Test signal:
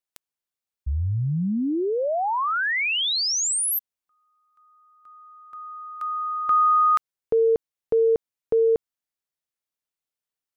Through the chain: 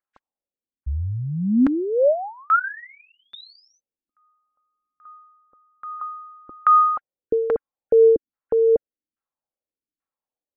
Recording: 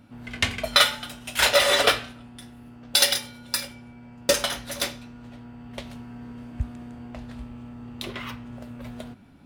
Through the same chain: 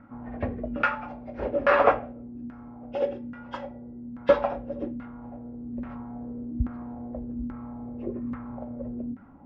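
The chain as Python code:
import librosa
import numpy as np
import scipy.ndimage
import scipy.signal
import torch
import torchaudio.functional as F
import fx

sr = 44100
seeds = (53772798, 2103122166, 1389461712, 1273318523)

y = fx.freq_compress(x, sr, knee_hz=1400.0, ratio=1.5)
y = fx.filter_lfo_lowpass(y, sr, shape='saw_down', hz=1.2, low_hz=250.0, high_hz=1500.0, q=2.5)
y = y + 0.31 * np.pad(y, (int(3.7 * sr / 1000.0), 0))[:len(y)]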